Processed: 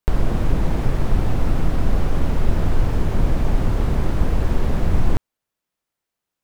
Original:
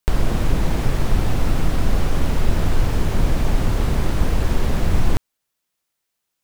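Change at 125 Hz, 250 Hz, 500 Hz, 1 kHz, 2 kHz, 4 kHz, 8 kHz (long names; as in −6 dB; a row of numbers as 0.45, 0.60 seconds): 0.0, 0.0, −0.5, −1.5, −3.5, −6.5, −8.0 decibels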